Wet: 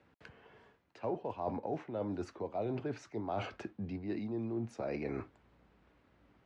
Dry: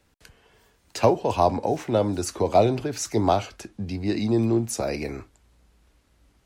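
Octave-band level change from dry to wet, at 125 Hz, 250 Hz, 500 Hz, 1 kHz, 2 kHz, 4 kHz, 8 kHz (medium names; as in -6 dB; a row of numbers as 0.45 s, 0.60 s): -15.0 dB, -13.5 dB, -15.5 dB, -17.0 dB, -12.0 dB, -20.0 dB, -29.5 dB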